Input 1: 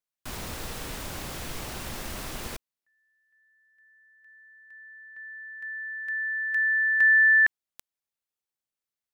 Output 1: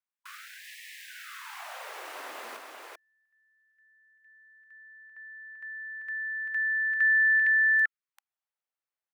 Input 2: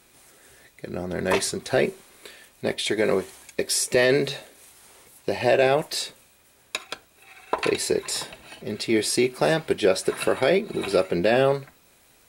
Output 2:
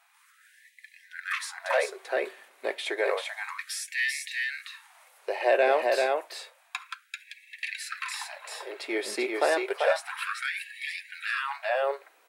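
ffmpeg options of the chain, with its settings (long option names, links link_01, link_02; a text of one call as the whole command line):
ffmpeg -i in.wav -filter_complex "[0:a]acrossover=split=460 2500:gain=0.0794 1 0.251[link_01][link_02][link_03];[link_01][link_02][link_03]amix=inputs=3:normalize=0,aecho=1:1:390:0.708,afftfilt=real='re*gte(b*sr/1024,210*pow(1700/210,0.5+0.5*sin(2*PI*0.3*pts/sr)))':imag='im*gte(b*sr/1024,210*pow(1700/210,0.5+0.5*sin(2*PI*0.3*pts/sr)))':win_size=1024:overlap=0.75" out.wav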